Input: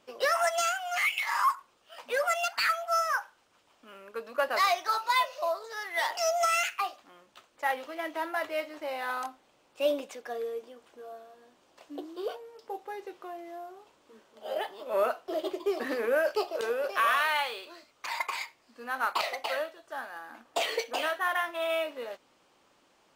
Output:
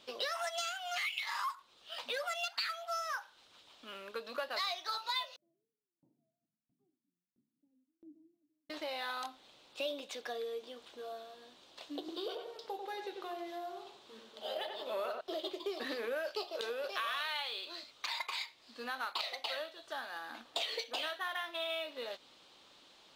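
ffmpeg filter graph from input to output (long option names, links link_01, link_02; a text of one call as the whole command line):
ffmpeg -i in.wav -filter_complex "[0:a]asettb=1/sr,asplit=3[link_01][link_02][link_03];[link_01]atrim=end=5.364[link_04];[link_02]atrim=start=5.36:end=8.7,asetpts=PTS-STARTPTS,afade=type=in:duration=0.004:curve=qsin,afade=type=out:start_time=3.336:duration=0.004:curve=qsin,asuperpass=centerf=190:order=8:qfactor=1.2,aecho=1:1:85:0.266,atrim=end_sample=147294,aeval=exprs='val(0)*pow(10,-35*if(lt(mod(1.5*n/s,1),2*abs(1.5)/1000),1-mod(1.5*n/s,1)/(2*abs(1.5)/1000),(mod(1.5*n/s,1)-2*abs(1.5)/1000)/(1-2*abs(1.5)/1000))/20)':channel_layout=same[link_05];[link_03]atrim=start=8.696[link_06];[link_04][link_05]acrossfade=duration=0.004:curve1=hsin:curve2=qsin[link_07];[link_07][link_06]acrossfade=duration=0.004:curve1=qsin:curve2=hsin,asettb=1/sr,asplit=3[link_08][link_09][link_10];[link_08]atrim=end=11.994[link_11];[link_09]atrim=start=11.99:end=15.21,asetpts=PTS-STARTPTS,afade=type=in:duration=0.004:curve=qsin,afade=type=out:start_time=3.216:duration=0.004:curve=qsin,highpass=56,bandreject=frequency=60:width_type=h:width=6,bandreject=frequency=120:width_type=h:width=6,bandreject=frequency=180:width_type=h:width=6,bandreject=frequency=240:width_type=h:width=6,bandreject=frequency=300:width_type=h:width=6,bandreject=frequency=360:width_type=h:width=6,bandreject=frequency=420:width_type=h:width=6,bandreject=frequency=480:width_type=h:width=6,bandreject=frequency=540:width_type=h:width=6,asplit=2[link_12][link_13];[link_13]adelay=93,lowpass=frequency=1900:poles=1,volume=-5dB,asplit=2[link_14][link_15];[link_15]adelay=93,lowpass=frequency=1900:poles=1,volume=0.36,asplit=2[link_16][link_17];[link_17]adelay=93,lowpass=frequency=1900:poles=1,volume=0.36,asplit=2[link_18][link_19];[link_19]adelay=93,lowpass=frequency=1900:poles=1,volume=0.36[link_20];[link_12][link_14][link_16][link_18][link_20]amix=inputs=5:normalize=0,atrim=end_sample=142002[link_21];[link_10]atrim=start=15.206[link_22];[link_11][link_21]acrossfade=duration=0.004:curve1=hsin:curve2=qsin[link_23];[link_23][link_22]acrossfade=duration=0.004:curve1=qsin:curve2=hsin,equalizer=frequency=3800:width_type=o:width=0.77:gain=14.5,acompressor=threshold=-39dB:ratio=3" out.wav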